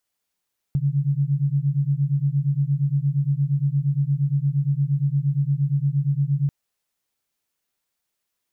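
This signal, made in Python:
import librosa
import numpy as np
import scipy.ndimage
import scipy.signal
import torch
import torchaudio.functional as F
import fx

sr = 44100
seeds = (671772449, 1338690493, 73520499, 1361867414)

y = fx.two_tone_beats(sr, length_s=5.74, hz=137.0, beat_hz=8.6, level_db=-21.5)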